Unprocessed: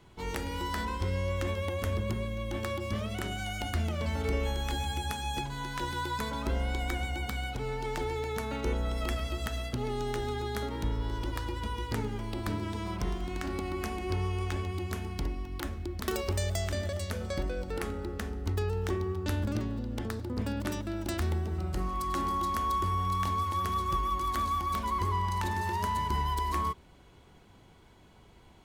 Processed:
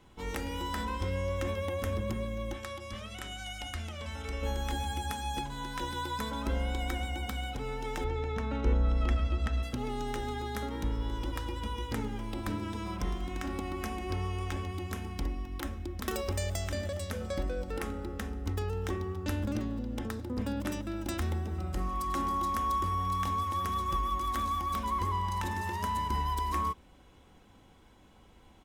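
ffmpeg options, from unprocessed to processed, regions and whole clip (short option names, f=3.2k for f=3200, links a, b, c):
-filter_complex "[0:a]asettb=1/sr,asplit=3[a][b][c];[a]atrim=end=2.534[d];[b]atrim=start=2.53:end=4.43,asetpts=PTS-STARTPTS,afade=t=in:d=0.004:c=qsin,afade=t=out:st=1.896:d=0.004:c=qsin,lowpass=11k,equalizer=f=230:w=0.31:g=-10.5[e];[c]atrim=start=4.426[f];[d][e]acrossfade=d=0.004:c1=hsin:c2=qsin[g];[g][f]acrossfade=d=0.004:c1=qsin:c2=hsin,asettb=1/sr,asplit=3[h][i][j];[h]atrim=end=8.044[k];[i]atrim=start=8.04:end=9.63,asetpts=PTS-STARTPTS,afade=t=in:d=0.004:c=qsin,afade=t=out:st=1.586:d=0.004:c=qsin,lowshelf=f=130:g=8,adynamicsmooth=sensitivity=3.5:basefreq=3.6k[l];[j]atrim=start=9.626[m];[k][l]acrossfade=d=0.004:c1=hsin:c2=qsin[n];[n][m]acrossfade=d=0.004:c1=qsin:c2=hsin,bandreject=f=4.4k:w=9.8,aecho=1:1:3.8:0.34,volume=-1.5dB"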